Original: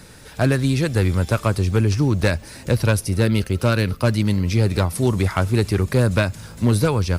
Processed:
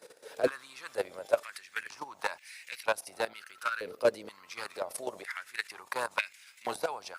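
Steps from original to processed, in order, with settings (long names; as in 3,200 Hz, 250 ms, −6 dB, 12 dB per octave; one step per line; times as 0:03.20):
sub-octave generator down 2 octaves, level −1 dB
output level in coarse steps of 14 dB
high-pass on a step sequencer 2.1 Hz 480–2,200 Hz
level −7.5 dB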